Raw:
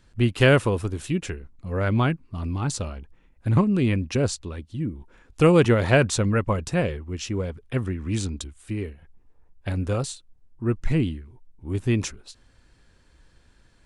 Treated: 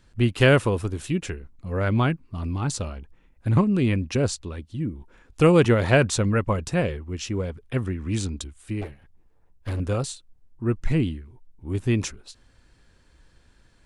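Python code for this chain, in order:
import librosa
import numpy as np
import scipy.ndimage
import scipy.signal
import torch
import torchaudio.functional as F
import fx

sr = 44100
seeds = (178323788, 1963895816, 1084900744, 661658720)

y = fx.lower_of_two(x, sr, delay_ms=9.2, at=(8.81, 9.8))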